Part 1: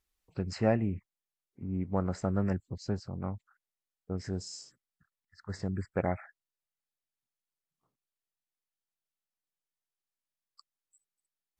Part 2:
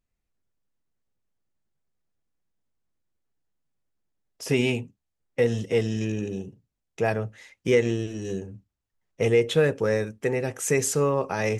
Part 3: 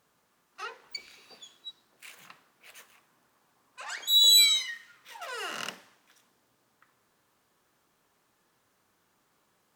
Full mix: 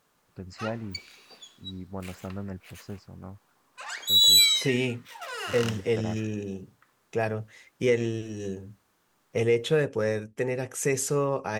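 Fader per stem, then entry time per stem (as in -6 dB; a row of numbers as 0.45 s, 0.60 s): -6.5 dB, -3.0 dB, +1.5 dB; 0.00 s, 0.15 s, 0.00 s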